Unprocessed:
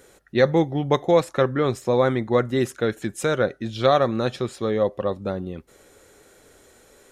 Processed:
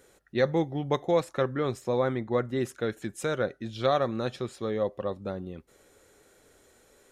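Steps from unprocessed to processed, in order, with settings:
0:01.99–0:02.65: high-shelf EQ 4,000 Hz −6 dB
level −7 dB

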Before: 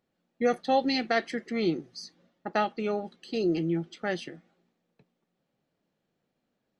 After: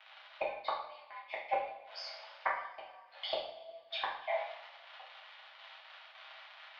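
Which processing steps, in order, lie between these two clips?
surface crackle 160 per second −43 dBFS
single-sideband voice off tune +330 Hz 310–3,500 Hz
gate with flip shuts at −28 dBFS, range −39 dB
coupled-rooms reverb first 0.59 s, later 2.1 s, from −20 dB, DRR −6 dB
level +7.5 dB

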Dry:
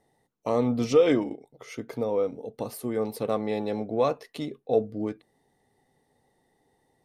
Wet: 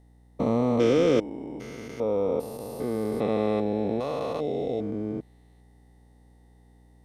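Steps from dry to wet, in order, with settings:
spectrum averaged block by block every 400 ms
mains hum 60 Hz, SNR 28 dB
level +4.5 dB

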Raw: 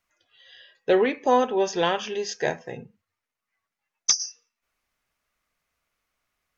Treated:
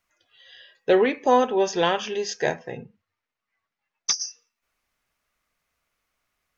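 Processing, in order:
0:02.54–0:04.21: low-pass filter 5,000 Hz 12 dB per octave
level +1.5 dB

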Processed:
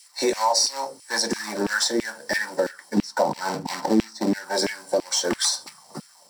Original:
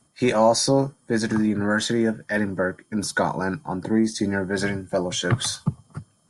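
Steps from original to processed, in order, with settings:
spectral tilt +3.5 dB per octave, from 0:02.96 −2 dB per octave, from 0:04.32 +3 dB per octave
log-companded quantiser 4 bits
convolution reverb RT60 0.20 s, pre-delay 3 ms, DRR 6.5 dB
auto-filter high-pass saw down 3 Hz 290–2,700 Hz
downward compressor 3 to 1, threshold −22 dBFS, peak gain reduction 18 dB

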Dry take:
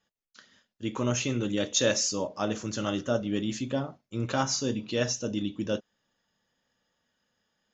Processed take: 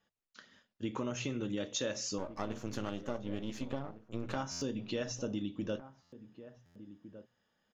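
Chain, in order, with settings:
0:02.18–0:04.36: gain on one half-wave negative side −12 dB
low-pass filter 3,300 Hz 6 dB per octave
mains-hum notches 60/120 Hz
downward compressor, threshold −33 dBFS, peak gain reduction 12 dB
slap from a distant wall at 250 metres, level −14 dB
buffer that repeats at 0:04.51/0:06.02/0:06.65, samples 512

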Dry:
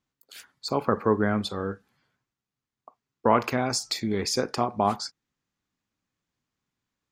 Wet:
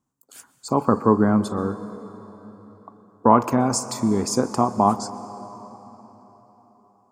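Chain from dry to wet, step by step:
octave-band graphic EQ 125/250/1,000/2,000/4,000/8,000 Hz +5/+8/+9/−8/−10/+10 dB
on a send: convolution reverb RT60 4.4 s, pre-delay 116 ms, DRR 14 dB

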